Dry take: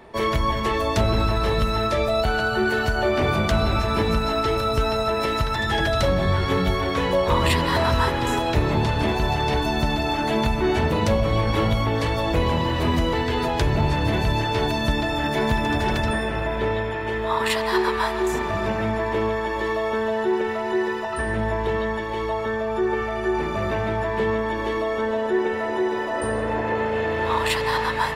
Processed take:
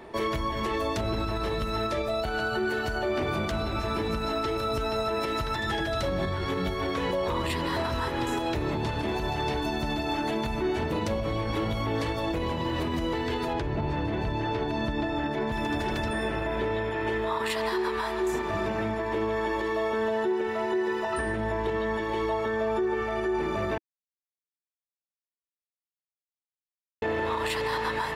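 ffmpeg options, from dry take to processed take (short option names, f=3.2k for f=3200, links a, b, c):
-filter_complex "[0:a]asettb=1/sr,asplit=3[a][b][c];[a]atrim=end=13.534[d];[b]atrim=start=13.53:end=15.52,asetpts=PTS-STARTPTS,afade=t=in:d=0.004:c=qsin,afade=t=out:st=1.986:d=0.004:c=qsin,aemphasis=mode=reproduction:type=75kf[e];[c]atrim=start=15.516[f];[d][e]acrossfade=d=0.004:c1=hsin:c2=qsin[g];[g][f]acrossfade=d=0.004:c1=qsin:c2=hsin,asplit=3[h][i][j];[h]atrim=end=23.78,asetpts=PTS-STARTPTS,afade=t=out:st=23.776:d=0.004:c=hsin[k];[i]atrim=start=23.78:end=27.02,asetpts=PTS-STARTPTS,volume=0[l];[j]atrim=start=27.02,asetpts=PTS-STARTPTS,afade=t=in:d=0.004:c=hsin[m];[k][l][m]concat=n=3:v=0:a=1,equalizer=f=330:w=3.3:g=5.5,alimiter=limit=-19.5dB:level=0:latency=1:release=246,lowshelf=f=140:g=-3"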